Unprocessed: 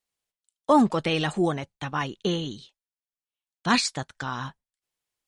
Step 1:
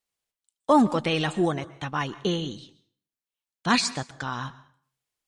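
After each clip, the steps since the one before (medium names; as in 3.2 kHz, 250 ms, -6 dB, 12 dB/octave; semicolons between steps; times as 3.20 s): plate-style reverb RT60 0.52 s, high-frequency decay 0.8×, pre-delay 110 ms, DRR 17.5 dB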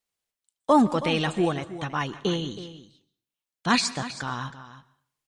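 delay 321 ms -14 dB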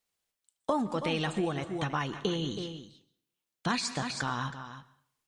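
compression 6:1, threshold -29 dBFS, peak gain reduction 14.5 dB; two-slope reverb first 0.35 s, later 1.5 s, from -26 dB, DRR 17 dB; trim +1.5 dB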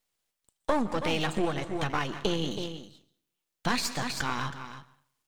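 partial rectifier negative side -12 dB; trim +5.5 dB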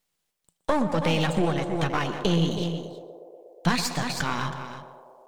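peaking EQ 170 Hz +10.5 dB 0.29 oct; on a send: band-passed feedback delay 120 ms, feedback 85%, band-pass 560 Hz, level -8.5 dB; on the sum: trim +2.5 dB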